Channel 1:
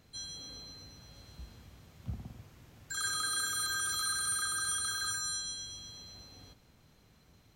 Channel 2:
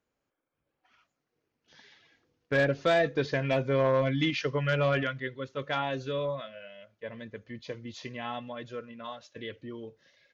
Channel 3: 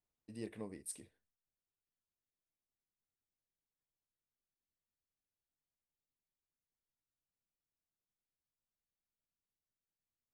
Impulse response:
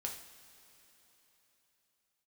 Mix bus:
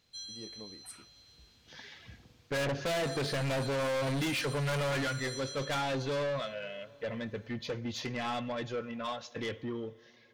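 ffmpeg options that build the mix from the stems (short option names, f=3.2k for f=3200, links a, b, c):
-filter_complex "[0:a]equalizer=f=4k:t=o:w=2.1:g=14,alimiter=limit=-20dB:level=0:latency=1:release=444,volume=-13.5dB[a];[1:a]dynaudnorm=f=110:g=11:m=5.5dB,volume=0dB,asplit=2[b][c];[c]volume=-12.5dB[d];[2:a]volume=-3dB[e];[3:a]atrim=start_sample=2205[f];[d][f]afir=irnorm=-1:irlink=0[g];[a][b][e][g]amix=inputs=4:normalize=0,asoftclip=type=tanh:threshold=-30dB"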